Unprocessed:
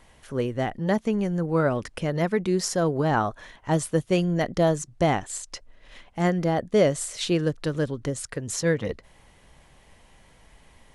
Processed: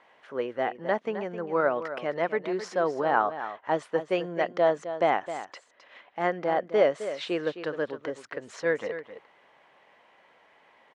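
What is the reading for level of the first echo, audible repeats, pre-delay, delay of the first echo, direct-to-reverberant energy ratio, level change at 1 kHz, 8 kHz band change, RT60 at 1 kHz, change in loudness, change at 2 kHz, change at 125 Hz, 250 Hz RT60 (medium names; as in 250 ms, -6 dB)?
-11.5 dB, 1, no reverb, 262 ms, no reverb, +1.0 dB, under -15 dB, no reverb, -3.0 dB, +0.5 dB, -18.0 dB, no reverb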